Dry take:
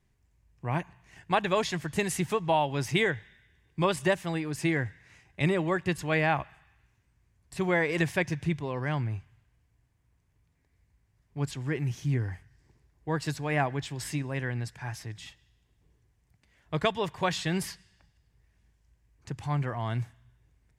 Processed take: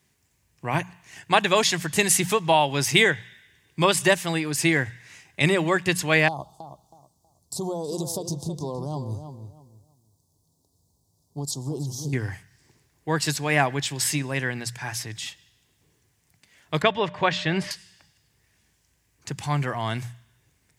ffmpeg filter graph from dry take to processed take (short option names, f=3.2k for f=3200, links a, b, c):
-filter_complex "[0:a]asettb=1/sr,asplit=3[a][b][c];[a]atrim=end=6.284[d];[b]atrim=start=6.28:end=12.13,asetpts=PTS-STARTPTS,afade=t=in:d=0.004:c=qsin,afade=t=out:st=5.846:d=0.004:c=qsin,acompressor=threshold=-29dB:ratio=10:attack=3.2:release=140:knee=1:detection=peak,asuperstop=centerf=2000:order=8:qfactor=0.65,asplit=2[e][f];[f]adelay=321,lowpass=f=2.9k:p=1,volume=-9dB,asplit=2[g][h];[h]adelay=321,lowpass=f=2.9k:p=1,volume=0.25,asplit=2[i][j];[j]adelay=321,lowpass=f=2.9k:p=1,volume=0.25[k];[e][g][i][k]amix=inputs=4:normalize=0,atrim=end_sample=257985[l];[c]atrim=start=12.126[m];[d][l]acrossfade=d=0.004:c1=hsin:c2=qsin[n];[n][m]acrossfade=d=0.004:c1=qsin:c2=hsin,asettb=1/sr,asplit=3[o][p][q];[o]atrim=end=16.824[r];[p]atrim=start=16.82:end=17.71,asetpts=PTS-STARTPTS,afade=t=in:d=0.004:c=qsin,afade=t=out:st=0.886:d=0.004:c=qsin,lowpass=2.7k,aeval=exprs='val(0)+0.00355*sin(2*PI*600*n/s)':c=same[s];[q]atrim=start=17.706[t];[r][s]acrossfade=d=0.004:c1=hsin:c2=qsin[u];[u][t]acrossfade=d=0.004:c1=qsin:c2=hsin,highpass=110,highshelf=f=2.7k:g=11,bandreject=f=60:t=h:w=6,bandreject=f=120:t=h:w=6,bandreject=f=180:t=h:w=6,volume=5dB"